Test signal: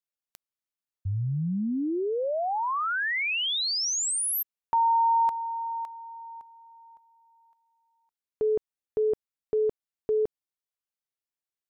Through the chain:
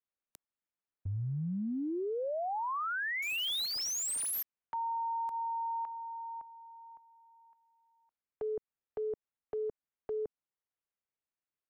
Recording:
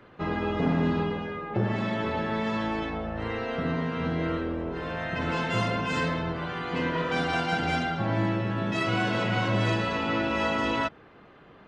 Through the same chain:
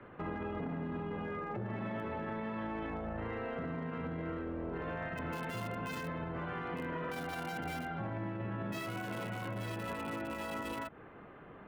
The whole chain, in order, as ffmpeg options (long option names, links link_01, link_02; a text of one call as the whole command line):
ffmpeg -i in.wav -filter_complex "[0:a]acrossover=split=290|480|2800[link_01][link_02][link_03][link_04];[link_04]acrusher=bits=5:mix=0:aa=0.000001[link_05];[link_01][link_02][link_03][link_05]amix=inputs=4:normalize=0,alimiter=limit=-24dB:level=0:latency=1:release=139,acompressor=threshold=-33dB:ratio=6:attack=0.21:release=157:knee=1:detection=peak" out.wav